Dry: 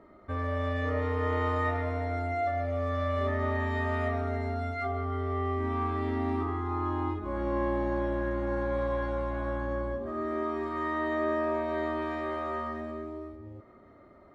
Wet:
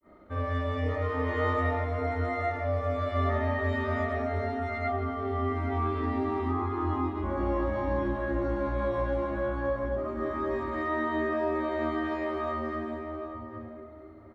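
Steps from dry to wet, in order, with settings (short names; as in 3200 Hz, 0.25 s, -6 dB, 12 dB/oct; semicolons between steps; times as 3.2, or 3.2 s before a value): grains 0.186 s, pitch spread up and down by 0 st; outdoor echo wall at 140 m, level -7 dB; gain +4.5 dB; Nellymoser 88 kbps 44100 Hz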